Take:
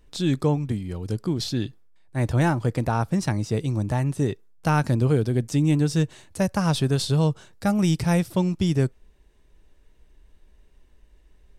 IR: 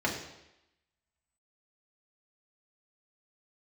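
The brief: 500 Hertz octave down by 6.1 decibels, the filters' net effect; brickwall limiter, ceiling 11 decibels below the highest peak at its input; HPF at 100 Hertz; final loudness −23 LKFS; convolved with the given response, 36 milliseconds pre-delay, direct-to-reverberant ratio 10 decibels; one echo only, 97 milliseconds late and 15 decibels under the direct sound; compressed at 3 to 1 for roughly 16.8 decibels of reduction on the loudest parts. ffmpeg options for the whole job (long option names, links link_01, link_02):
-filter_complex "[0:a]highpass=100,equalizer=frequency=500:width_type=o:gain=-8,acompressor=threshold=-43dB:ratio=3,alimiter=level_in=9dB:limit=-24dB:level=0:latency=1,volume=-9dB,aecho=1:1:97:0.178,asplit=2[link_01][link_02];[1:a]atrim=start_sample=2205,adelay=36[link_03];[link_02][link_03]afir=irnorm=-1:irlink=0,volume=-19.5dB[link_04];[link_01][link_04]amix=inputs=2:normalize=0,volume=19.5dB"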